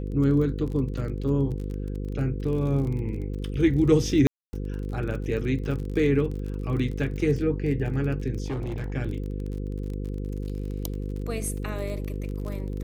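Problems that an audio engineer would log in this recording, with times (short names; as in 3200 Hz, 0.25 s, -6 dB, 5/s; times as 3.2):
buzz 50 Hz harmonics 10 -31 dBFS
crackle 33/s -33 dBFS
4.27–4.53 gap 0.26 s
8.46–8.94 clipped -26.5 dBFS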